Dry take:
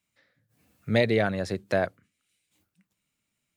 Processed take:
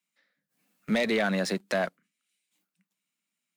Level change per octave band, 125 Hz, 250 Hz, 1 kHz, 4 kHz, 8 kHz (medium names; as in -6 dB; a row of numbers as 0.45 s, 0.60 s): -7.0 dB, 0.0 dB, -1.0 dB, +1.5 dB, +7.5 dB